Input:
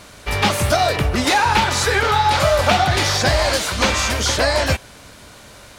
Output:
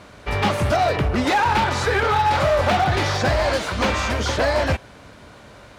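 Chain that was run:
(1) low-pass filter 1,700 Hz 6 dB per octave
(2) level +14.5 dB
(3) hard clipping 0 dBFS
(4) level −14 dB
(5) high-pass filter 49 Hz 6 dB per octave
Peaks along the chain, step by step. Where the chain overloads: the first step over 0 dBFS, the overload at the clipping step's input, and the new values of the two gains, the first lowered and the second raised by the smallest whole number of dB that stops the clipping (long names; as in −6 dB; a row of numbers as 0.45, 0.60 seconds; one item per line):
−5.0, +9.5, 0.0, −14.0, −11.0 dBFS
step 2, 9.5 dB
step 2 +4.5 dB, step 4 −4 dB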